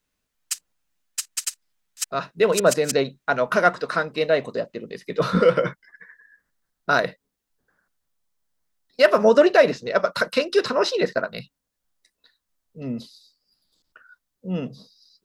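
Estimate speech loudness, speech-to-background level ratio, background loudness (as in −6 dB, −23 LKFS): −21.5 LKFS, 8.5 dB, −30.0 LKFS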